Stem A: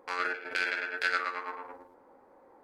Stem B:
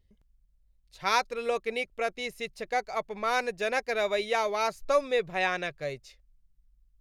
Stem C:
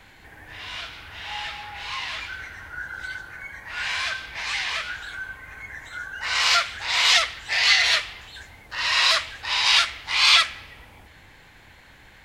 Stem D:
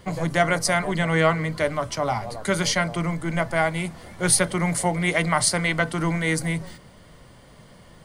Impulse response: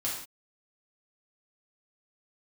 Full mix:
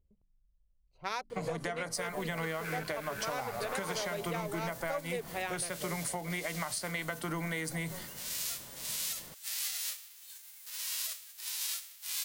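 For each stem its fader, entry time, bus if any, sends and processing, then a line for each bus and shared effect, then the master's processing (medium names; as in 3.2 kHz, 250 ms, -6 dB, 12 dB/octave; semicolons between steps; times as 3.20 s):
-0.5 dB, 2.30 s, no send, compressor with a negative ratio -42 dBFS, ratio -1
-4.5 dB, 0.00 s, no send, local Wiener filter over 25 samples; de-hum 47.16 Hz, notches 7
-11.5 dB, 1.95 s, no send, formants flattened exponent 0.3; pre-emphasis filter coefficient 0.97; upward compressor, threshold -31 dBFS
-1.5 dB, 1.30 s, no send, bass shelf 150 Hz -9 dB; compression, threshold -27 dBFS, peak gain reduction 12.5 dB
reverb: none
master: compression 4:1, threshold -33 dBFS, peak gain reduction 9.5 dB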